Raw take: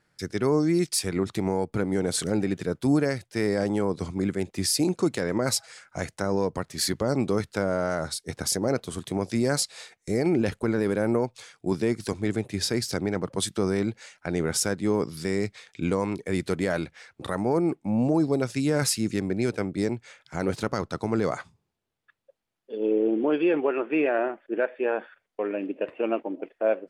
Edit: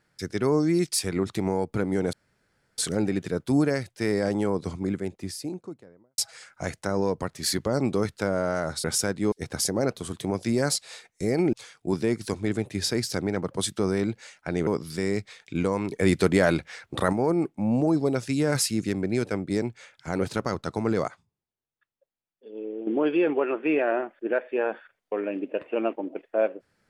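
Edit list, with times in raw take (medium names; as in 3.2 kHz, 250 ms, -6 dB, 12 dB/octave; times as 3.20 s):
2.13 s: insert room tone 0.65 s
3.81–5.53 s: studio fade out
10.40–11.32 s: delete
14.46–14.94 s: move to 8.19 s
16.18–17.40 s: gain +6 dB
21.35–23.14 s: gain -11.5 dB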